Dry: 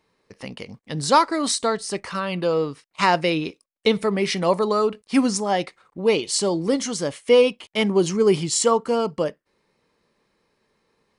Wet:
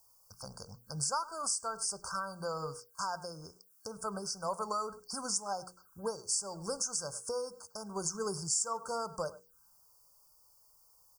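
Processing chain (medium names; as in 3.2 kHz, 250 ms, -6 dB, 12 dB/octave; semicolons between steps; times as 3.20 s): amplifier tone stack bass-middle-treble 10-0-10; hum notches 60/120/180/240/300/360/420/480 Hz; speakerphone echo 100 ms, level -19 dB; compression 4:1, threshold -38 dBFS, peak gain reduction 15.5 dB; added noise blue -72 dBFS; touch-sensitive phaser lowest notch 250 Hz, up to 3.5 kHz, full sweep at -44 dBFS; FFT band-reject 1.6–4.5 kHz; trim +7 dB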